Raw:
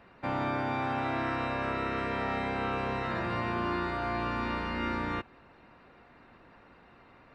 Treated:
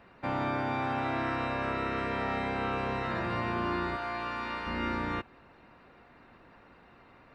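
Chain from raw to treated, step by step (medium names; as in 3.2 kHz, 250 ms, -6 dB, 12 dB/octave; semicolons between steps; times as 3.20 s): 3.96–4.67 s: bass shelf 410 Hz -11.5 dB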